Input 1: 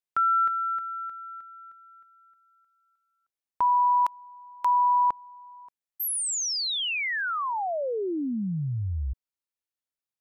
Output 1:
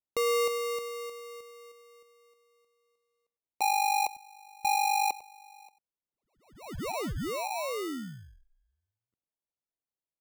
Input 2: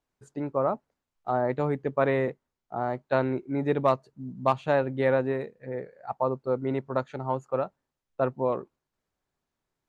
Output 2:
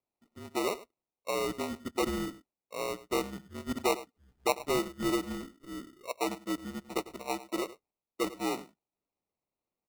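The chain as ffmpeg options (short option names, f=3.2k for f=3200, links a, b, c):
-af "highpass=f=450:t=q:w=0.5412,highpass=f=450:t=q:w=1.307,lowpass=f=3.4k:t=q:w=0.5176,lowpass=f=3.4k:t=q:w=0.7071,lowpass=f=3.4k:t=q:w=1.932,afreqshift=-190,aecho=1:1:99:0.15,acrusher=samples=27:mix=1:aa=0.000001,volume=-4.5dB"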